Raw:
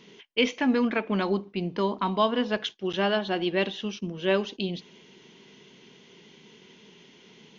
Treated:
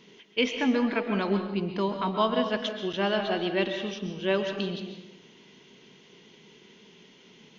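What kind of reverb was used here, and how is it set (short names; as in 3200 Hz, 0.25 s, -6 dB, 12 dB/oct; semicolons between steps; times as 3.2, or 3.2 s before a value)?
digital reverb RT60 0.99 s, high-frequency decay 0.75×, pre-delay 90 ms, DRR 5.5 dB; gain -2 dB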